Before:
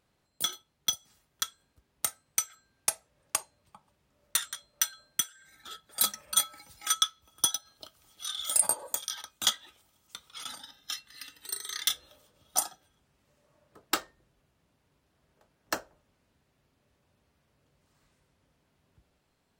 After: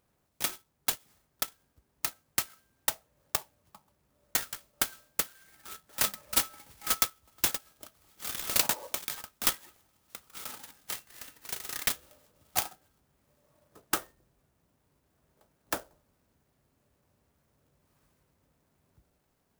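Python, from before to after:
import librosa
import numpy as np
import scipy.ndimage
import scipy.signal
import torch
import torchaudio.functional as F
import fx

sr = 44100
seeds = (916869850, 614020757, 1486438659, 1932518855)

y = fx.clock_jitter(x, sr, seeds[0], jitter_ms=0.083)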